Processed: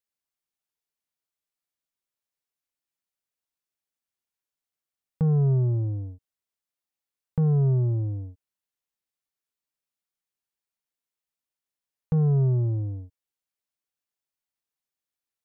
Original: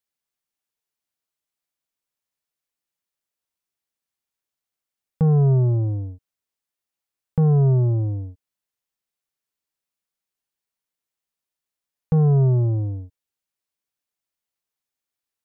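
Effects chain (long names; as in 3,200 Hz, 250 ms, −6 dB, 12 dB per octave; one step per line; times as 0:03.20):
dynamic equaliser 770 Hz, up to −5 dB, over −39 dBFS, Q 1
level −4.5 dB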